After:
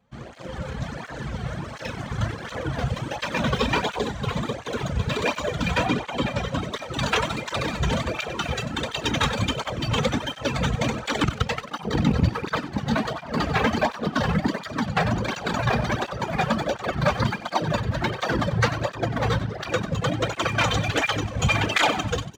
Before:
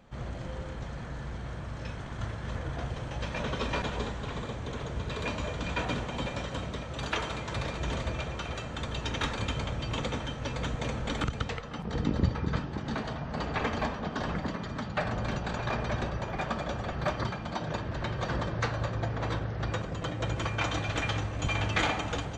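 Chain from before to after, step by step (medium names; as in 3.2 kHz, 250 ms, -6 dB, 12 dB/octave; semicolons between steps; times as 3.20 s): rattle on loud lows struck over -25 dBFS, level -34 dBFS; reverb removal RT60 1.3 s; thinning echo 94 ms, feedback 34%, level -14 dB; level rider gain up to 10 dB; waveshaping leveller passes 2; 5.86–6.62 s: treble shelf 5.1 kHz -7.5 dB; cancelling through-zero flanger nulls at 1.4 Hz, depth 3.5 ms; trim -3 dB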